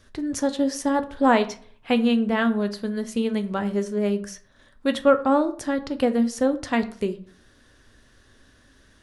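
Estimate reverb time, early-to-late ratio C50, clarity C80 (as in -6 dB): 0.50 s, 15.5 dB, 19.5 dB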